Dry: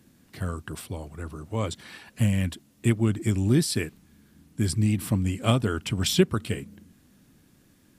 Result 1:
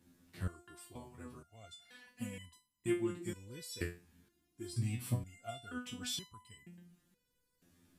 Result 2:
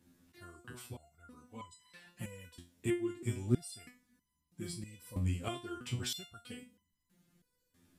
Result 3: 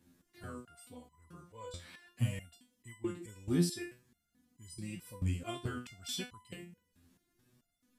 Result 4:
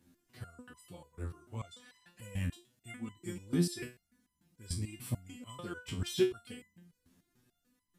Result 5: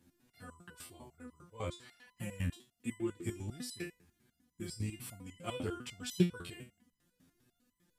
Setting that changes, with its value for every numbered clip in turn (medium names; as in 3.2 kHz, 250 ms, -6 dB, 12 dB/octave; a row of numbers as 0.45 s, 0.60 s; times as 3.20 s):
resonator arpeggio, rate: 2.1 Hz, 3.1 Hz, 4.6 Hz, 6.8 Hz, 10 Hz